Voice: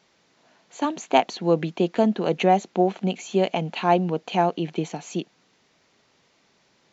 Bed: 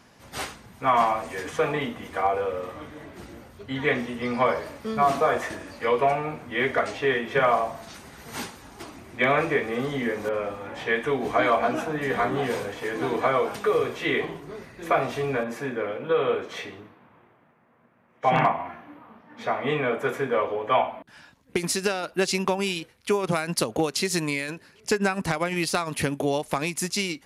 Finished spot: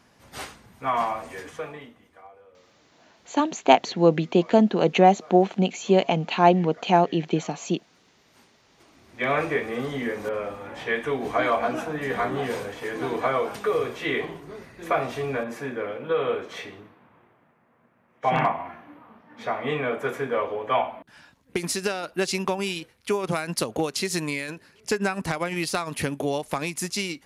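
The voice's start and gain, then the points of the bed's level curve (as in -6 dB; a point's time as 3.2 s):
2.55 s, +2.5 dB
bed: 1.35 s -4 dB
2.33 s -26 dB
8.57 s -26 dB
9.33 s -1.5 dB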